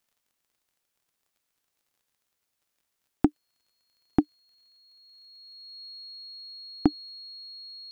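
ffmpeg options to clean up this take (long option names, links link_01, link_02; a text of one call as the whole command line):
ffmpeg -i in.wav -af "adeclick=threshold=4,bandreject=frequency=4300:width=30" out.wav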